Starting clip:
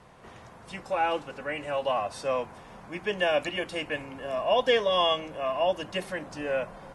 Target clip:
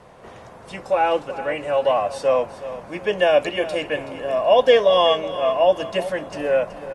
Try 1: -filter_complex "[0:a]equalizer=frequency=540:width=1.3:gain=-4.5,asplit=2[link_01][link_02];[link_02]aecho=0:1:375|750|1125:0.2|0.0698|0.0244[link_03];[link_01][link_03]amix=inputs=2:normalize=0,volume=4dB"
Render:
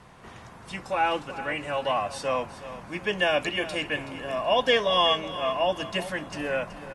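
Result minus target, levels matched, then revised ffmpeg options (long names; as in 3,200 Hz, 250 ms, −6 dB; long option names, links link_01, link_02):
500 Hz band −3.5 dB
-filter_complex "[0:a]equalizer=frequency=540:width=1.3:gain=6.5,asplit=2[link_01][link_02];[link_02]aecho=0:1:375|750|1125:0.2|0.0698|0.0244[link_03];[link_01][link_03]amix=inputs=2:normalize=0,volume=4dB"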